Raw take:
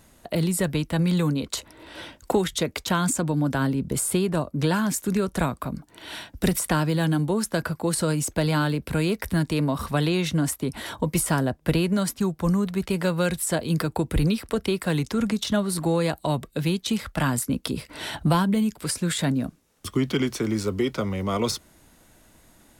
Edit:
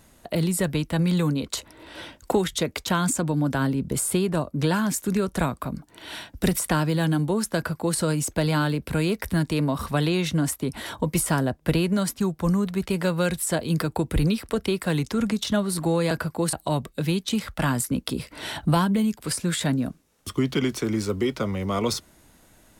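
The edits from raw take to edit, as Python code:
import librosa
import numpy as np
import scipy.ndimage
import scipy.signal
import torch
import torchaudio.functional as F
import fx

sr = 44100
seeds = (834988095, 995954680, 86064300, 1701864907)

y = fx.edit(x, sr, fx.duplicate(start_s=7.56, length_s=0.42, to_s=16.11), tone=tone)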